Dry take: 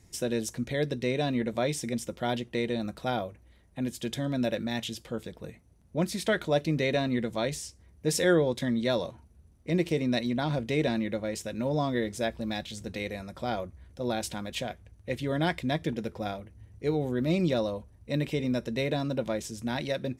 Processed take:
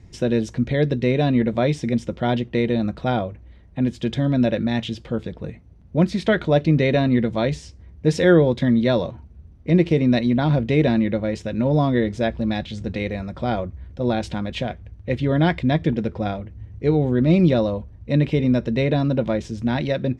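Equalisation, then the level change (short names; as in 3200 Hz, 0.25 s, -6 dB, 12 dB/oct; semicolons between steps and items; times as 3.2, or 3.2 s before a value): LPF 3800 Hz 12 dB/oct; low shelf 280 Hz +8 dB; +6.0 dB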